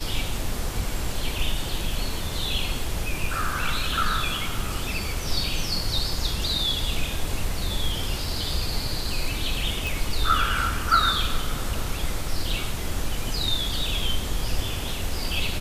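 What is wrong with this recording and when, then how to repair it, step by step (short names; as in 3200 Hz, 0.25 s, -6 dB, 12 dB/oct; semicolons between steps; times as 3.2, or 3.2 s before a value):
9.87 pop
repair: de-click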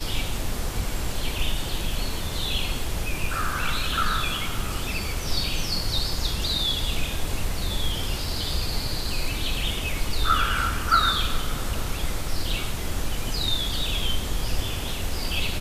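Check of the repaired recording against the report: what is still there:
none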